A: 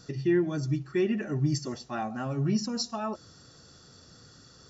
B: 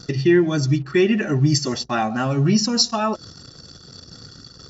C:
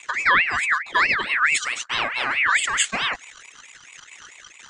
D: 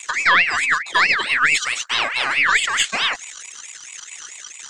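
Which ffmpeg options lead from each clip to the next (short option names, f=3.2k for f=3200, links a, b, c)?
-filter_complex "[0:a]anlmdn=0.00158,equalizer=f=3.8k:t=o:w=2.1:g=6.5,asplit=2[a][b];[b]acompressor=threshold=-35dB:ratio=6,volume=-1.5dB[c];[a][c]amix=inputs=2:normalize=0,volume=7.5dB"
-af "aeval=exprs='val(0)*sin(2*PI*1900*n/s+1900*0.3/4.6*sin(2*PI*4.6*n/s))':c=same"
-filter_complex "[0:a]bass=f=250:g=-7,treble=f=4k:g=14,acrossover=split=4400[a][b];[b]acompressor=threshold=-34dB:ratio=4:attack=1:release=60[c];[a][c]amix=inputs=2:normalize=0,aeval=exprs='0.562*(cos(1*acos(clip(val(0)/0.562,-1,1)))-cos(1*PI/2))+0.0708*(cos(2*acos(clip(val(0)/0.562,-1,1)))-cos(2*PI/2))':c=same,volume=2dB"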